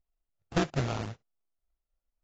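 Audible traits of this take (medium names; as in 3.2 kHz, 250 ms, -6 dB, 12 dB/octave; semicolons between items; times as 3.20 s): a buzz of ramps at a fixed pitch in blocks of 64 samples; phasing stages 4, 1.9 Hz, lowest notch 560–1500 Hz; aliases and images of a low sample rate 2 kHz, jitter 20%; AAC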